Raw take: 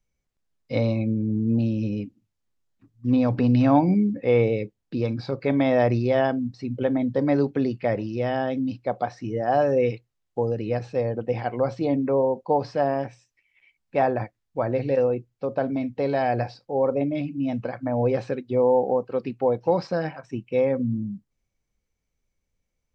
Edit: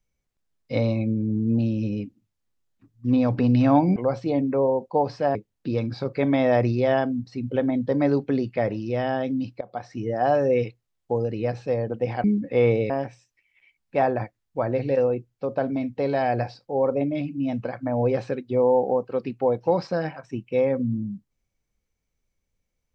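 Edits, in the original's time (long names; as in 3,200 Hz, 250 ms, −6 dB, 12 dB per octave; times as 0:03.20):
0:03.96–0:04.62: swap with 0:11.51–0:12.90
0:08.88–0:09.24: fade in, from −20.5 dB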